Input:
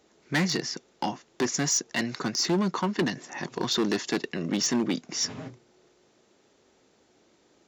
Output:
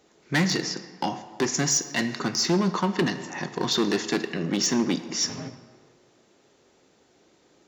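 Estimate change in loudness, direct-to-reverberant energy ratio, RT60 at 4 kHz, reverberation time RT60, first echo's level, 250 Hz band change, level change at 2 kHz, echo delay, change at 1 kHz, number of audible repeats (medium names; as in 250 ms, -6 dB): +2.5 dB, 9.0 dB, 1.0 s, 1.6 s, no echo, +2.5 dB, +2.5 dB, no echo, +2.5 dB, no echo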